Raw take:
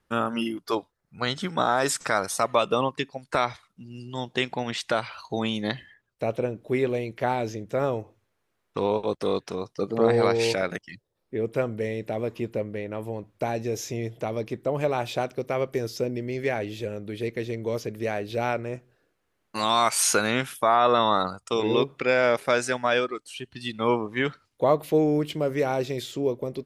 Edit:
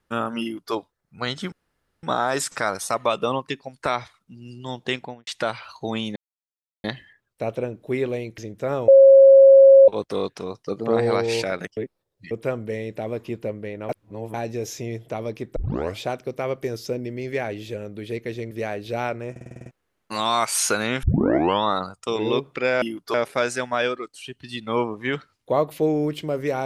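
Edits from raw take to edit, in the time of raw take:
0:00.42–0:00.74: duplicate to 0:22.26
0:01.52: splice in room tone 0.51 s
0:04.43–0:04.76: fade out and dull
0:05.65: splice in silence 0.68 s
0:07.19–0:07.49: remove
0:07.99–0:08.99: beep over 543 Hz −6.5 dBFS
0:10.88–0:11.42: reverse
0:13.00–0:13.45: reverse
0:14.67: tape start 0.44 s
0:17.62–0:17.95: remove
0:18.75: stutter in place 0.05 s, 8 plays
0:20.47: tape start 0.60 s

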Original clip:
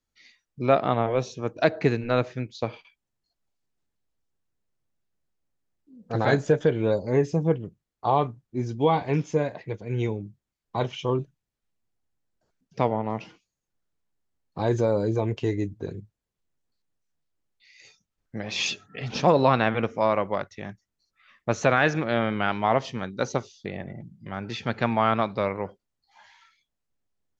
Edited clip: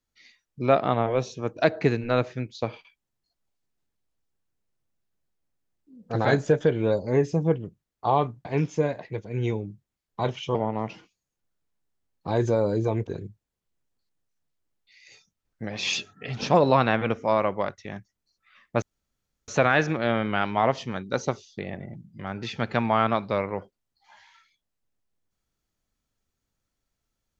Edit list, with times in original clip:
0:08.45–0:09.01: remove
0:11.11–0:12.86: remove
0:15.38–0:15.80: remove
0:21.55: splice in room tone 0.66 s

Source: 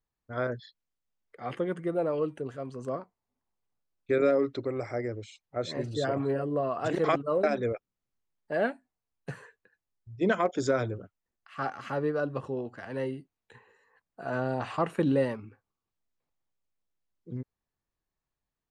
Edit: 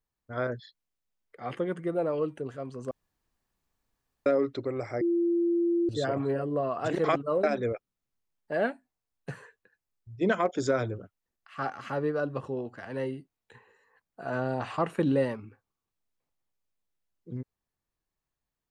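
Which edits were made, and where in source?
0:02.91–0:04.26: fill with room tone
0:05.01–0:05.89: beep over 342 Hz −22.5 dBFS

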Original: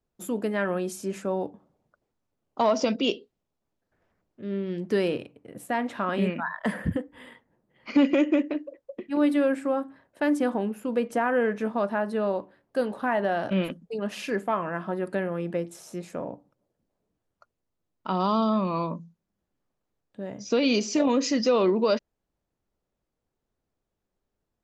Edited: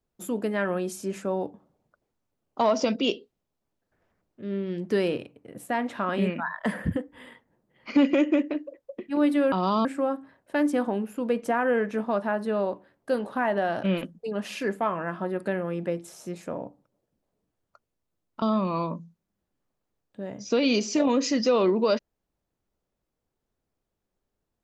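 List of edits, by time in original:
0:18.09–0:18.42: move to 0:09.52

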